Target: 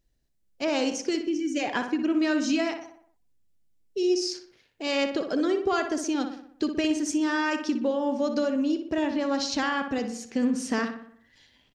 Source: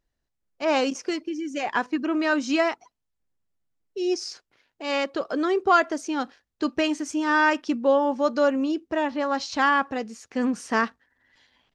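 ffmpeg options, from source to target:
ffmpeg -i in.wav -filter_complex "[0:a]equalizer=frequency=1100:width=0.69:gain=-10.5,acompressor=threshold=-29dB:ratio=4,asplit=2[link_01][link_02];[link_02]adelay=61,lowpass=frequency=2800:poles=1,volume=-7dB,asplit=2[link_03][link_04];[link_04]adelay=61,lowpass=frequency=2800:poles=1,volume=0.54,asplit=2[link_05][link_06];[link_06]adelay=61,lowpass=frequency=2800:poles=1,volume=0.54,asplit=2[link_07][link_08];[link_08]adelay=61,lowpass=frequency=2800:poles=1,volume=0.54,asplit=2[link_09][link_10];[link_10]adelay=61,lowpass=frequency=2800:poles=1,volume=0.54,asplit=2[link_11][link_12];[link_12]adelay=61,lowpass=frequency=2800:poles=1,volume=0.54,asplit=2[link_13][link_14];[link_14]adelay=61,lowpass=frequency=2800:poles=1,volume=0.54[link_15];[link_01][link_03][link_05][link_07][link_09][link_11][link_13][link_15]amix=inputs=8:normalize=0,volume=5.5dB" out.wav

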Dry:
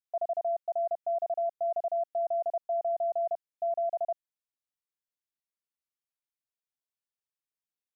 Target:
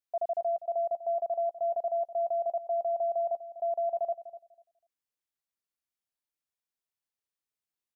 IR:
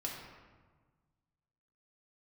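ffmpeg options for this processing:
-filter_complex "[0:a]asplit=2[link_01][link_02];[link_02]adelay=247,lowpass=frequency=880:poles=1,volume=-12dB,asplit=2[link_03][link_04];[link_04]adelay=247,lowpass=frequency=880:poles=1,volume=0.23,asplit=2[link_05][link_06];[link_06]adelay=247,lowpass=frequency=880:poles=1,volume=0.23[link_07];[link_01][link_03][link_05][link_07]amix=inputs=4:normalize=0"

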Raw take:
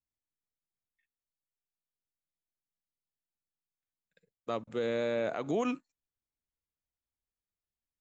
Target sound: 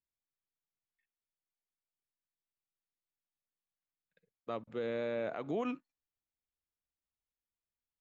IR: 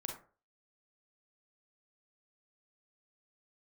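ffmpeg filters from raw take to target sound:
-af "lowpass=3600,volume=-4.5dB"

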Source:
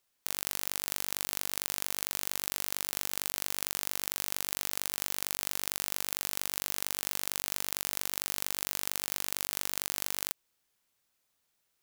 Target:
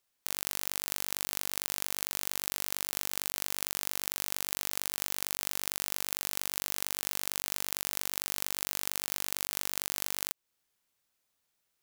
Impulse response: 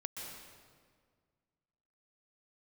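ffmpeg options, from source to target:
-af "aeval=exprs='0.668*(cos(1*acos(clip(val(0)/0.668,-1,1)))-cos(1*PI/2))+0.0596*(cos(7*acos(clip(val(0)/0.668,-1,1)))-cos(7*PI/2))':channel_layout=same,alimiter=limit=-11dB:level=0:latency=1:release=288,volume=6.5dB"

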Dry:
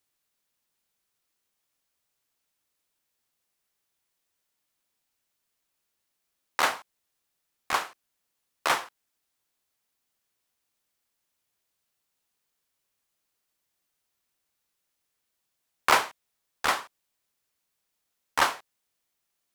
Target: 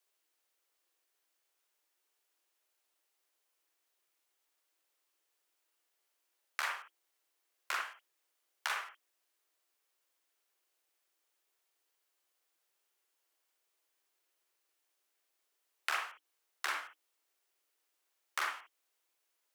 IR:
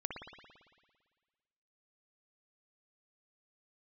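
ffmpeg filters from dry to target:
-filter_complex "[0:a]afreqshift=300,acompressor=threshold=-34dB:ratio=4[link_01];[1:a]atrim=start_sample=2205,atrim=end_sample=3528[link_02];[link_01][link_02]afir=irnorm=-1:irlink=0,volume=1dB"

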